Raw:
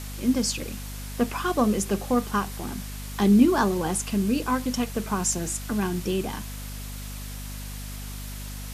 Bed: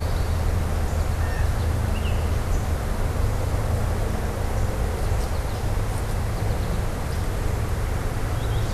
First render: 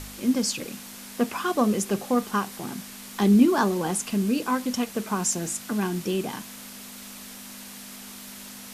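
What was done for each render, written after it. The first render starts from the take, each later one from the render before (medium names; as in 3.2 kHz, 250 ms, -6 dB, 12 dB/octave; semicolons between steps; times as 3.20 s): de-hum 50 Hz, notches 3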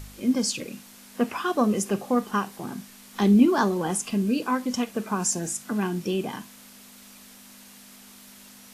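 noise print and reduce 7 dB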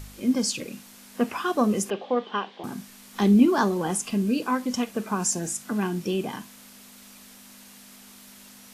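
1.90–2.64 s: cabinet simulation 340–4000 Hz, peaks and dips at 490 Hz +3 dB, 1.3 kHz -5 dB, 3.3 kHz +9 dB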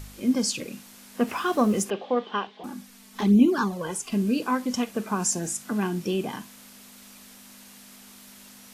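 1.27–1.83 s: companding laws mixed up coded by mu; 2.47–4.12 s: touch-sensitive flanger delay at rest 5 ms, full sweep at -13 dBFS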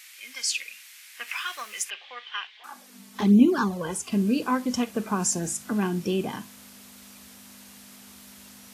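high-pass sweep 2.1 kHz -> 71 Hz, 2.59–3.17 s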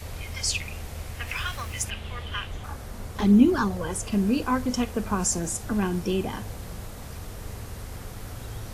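add bed -13 dB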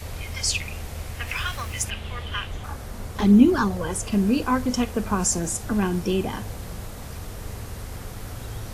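trim +2.5 dB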